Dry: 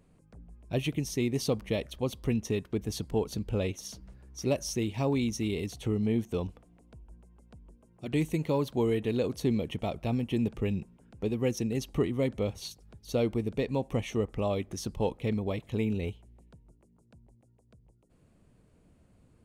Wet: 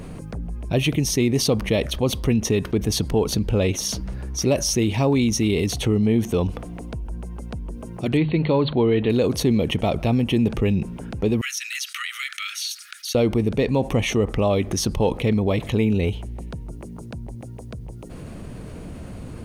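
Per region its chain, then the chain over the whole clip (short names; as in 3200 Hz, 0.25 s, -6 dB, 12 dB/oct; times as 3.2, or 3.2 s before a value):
8.17–9.1 brick-wall FIR low-pass 4500 Hz + notches 50/100/150/200 Hz
11.41–13.15 steep high-pass 1300 Hz 96 dB/oct + compressor 2.5:1, threshold -46 dBFS
whole clip: high shelf 11000 Hz -3.5 dB; notch 7500 Hz, Q 10; fast leveller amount 50%; gain +7.5 dB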